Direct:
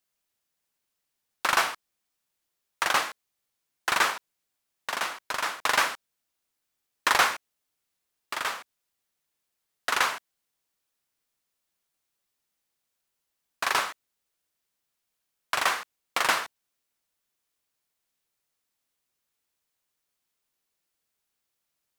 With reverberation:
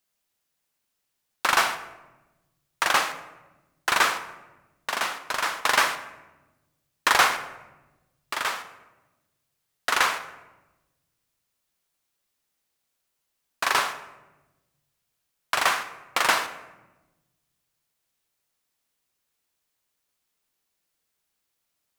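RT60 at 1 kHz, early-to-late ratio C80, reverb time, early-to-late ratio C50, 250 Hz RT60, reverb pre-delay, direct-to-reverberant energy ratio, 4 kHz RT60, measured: 1.0 s, 14.0 dB, 1.1 s, 11.5 dB, 1.7 s, 27 ms, 10.0 dB, 0.65 s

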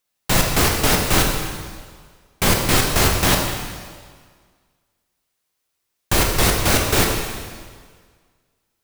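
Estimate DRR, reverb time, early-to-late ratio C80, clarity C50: 0.5 dB, 1.7 s, 4.5 dB, 3.0 dB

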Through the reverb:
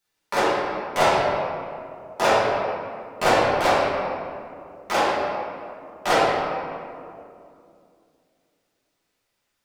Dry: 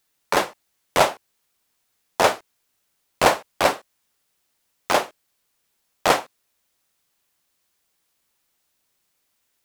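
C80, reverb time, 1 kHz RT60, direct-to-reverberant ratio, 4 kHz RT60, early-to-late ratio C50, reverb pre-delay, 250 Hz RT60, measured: -0.5 dB, 2.5 s, 2.2 s, -11.0 dB, 1.3 s, -2.5 dB, 5 ms, 3.3 s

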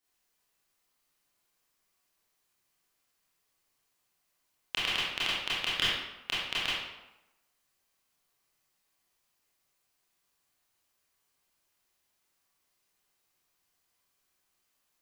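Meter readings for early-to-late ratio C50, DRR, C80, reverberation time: -2.0 dB, -9.5 dB, 2.0 dB, 0.95 s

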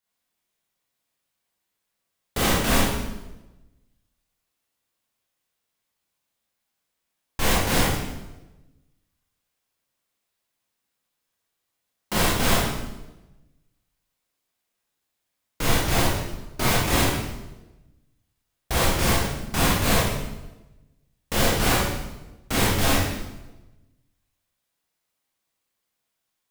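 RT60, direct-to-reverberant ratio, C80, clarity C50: 1.1 s, -7.0 dB, 2.5 dB, -1.0 dB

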